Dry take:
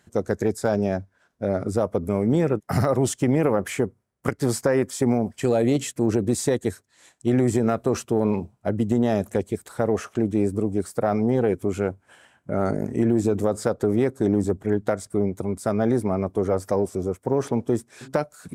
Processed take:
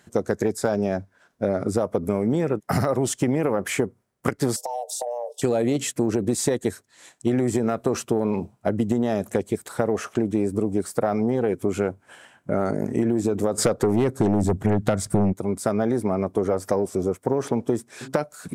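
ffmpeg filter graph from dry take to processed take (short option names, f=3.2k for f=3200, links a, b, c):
-filter_complex "[0:a]asettb=1/sr,asplit=3[a][b][c];[a]atrim=end=4.564[d];[b]atrim=start=4.56:end=5.42,asetpts=PTS-STARTPTS,afade=t=in:d=0.004:c=qsin,afade=t=out:st=0.856:d=0.004:c=qsin,afreqshift=360,asuperstop=centerf=1700:order=8:qfactor=0.64,acompressor=threshold=-31dB:ratio=6:attack=3.2:release=140:knee=1:detection=peak[e];[c]atrim=start=5.416[f];[d][e]acrossfade=d=0.004:c1=hsin:c2=qsin[g];[g][f]acrossfade=d=0.004:c1=qsin:c2=hsin,asettb=1/sr,asplit=3[h][i][j];[h]atrim=end=13.584[k];[i]atrim=start=13.58:end=15.33,asetpts=PTS-STARTPTS,afade=t=in:d=0.004:c=qsin,afade=t=out:st=1.746:d=0.004:c=qsin,asubboost=boost=7:cutoff=200,aeval=exprs='0.398*sin(PI/2*1.78*val(0)/0.398)':c=same[l];[j]atrim=start=15.326[m];[k][l]acrossfade=d=0.004:c1=hsin:c2=qsin[n];[n][m]acrossfade=d=0.004:c1=qsin:c2=hsin,equalizer=f=61:w=0.95:g=-8.5,acompressor=threshold=-23dB:ratio=6,volume=5dB"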